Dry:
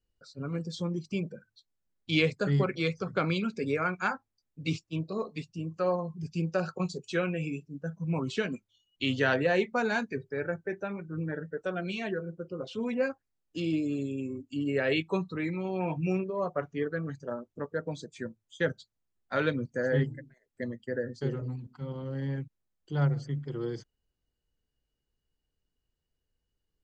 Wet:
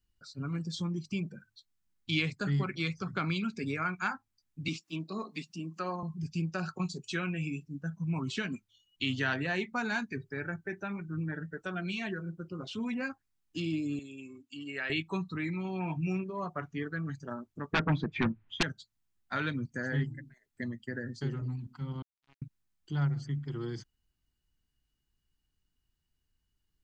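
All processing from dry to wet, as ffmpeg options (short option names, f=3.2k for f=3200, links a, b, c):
-filter_complex "[0:a]asettb=1/sr,asplit=3[a][b][c];[a]atrim=end=4.684[d];[b]atrim=start=4.68:end=6.03,asetpts=PTS-STARTPTS,afade=t=in:d=0.004:c=qsin,afade=t=out:st=1.346:d=0.004:c=qsin,highpass=f=190:w=0.5412,highpass=f=190:w=1.3066,acompressor=mode=upward:threshold=-43dB:ratio=2.5:attack=3.2:release=140:knee=2.83:detection=peak[e];[c]atrim=start=6.026[f];[d][e]acrossfade=d=0.004:c1=hsin:c2=qsin[g];[g][f]acrossfade=d=0.004:c1=qsin:c2=hsin,asettb=1/sr,asplit=3[h][i][j];[h]atrim=end=13.994[k];[i]atrim=start=13.99:end=14.9,asetpts=PTS-STARTPTS,afade=t=in:d=0.004:c=qsin,afade=t=out:st=0.906:d=0.004:c=qsin,highpass=f=1.1k:p=1,highshelf=f=5.9k:g=-7[l];[j]atrim=start=14.896[m];[k][l]acrossfade=d=0.004:c1=hsin:c2=qsin[n];[n][m]acrossfade=d=0.004:c1=qsin:c2=hsin,asettb=1/sr,asplit=3[o][p][q];[o]atrim=end=17.734[r];[p]atrim=start=17.73:end=18.63,asetpts=PTS-STARTPTS,afade=t=in:d=0.004:c=qsin,afade=t=out:st=0.896:d=0.004:c=qsin,lowpass=f=2.5k:w=0.5412,lowpass=f=2.5k:w=1.3066,aeval=exprs='0.15*sin(PI/2*5.01*val(0)/0.15)':c=same[s];[q]atrim=start=18.626[t];[r][s]acrossfade=d=0.004:c1=hsin:c2=qsin[u];[u][t]acrossfade=d=0.004:c1=qsin:c2=hsin,asettb=1/sr,asplit=3[v][w][x];[v]atrim=end=22.024[y];[w]atrim=start=22.02:end=22.42,asetpts=PTS-STARTPTS,afade=t=in:d=0.004:c=qsin,afade=t=out:st=0.396:d=0.004:c=qsin,lowshelf=f=99:g=-7,acrusher=bits=3:mix=0:aa=0.5[z];[x]atrim=start=22.416[aa];[y][z]acrossfade=d=0.004:c1=hsin:c2=qsin[ab];[ab][aa]acrossfade=d=0.004:c1=qsin:c2=hsin,equalizer=f=510:w=2.1:g=-15,acompressor=threshold=-39dB:ratio=1.5,volume=3dB"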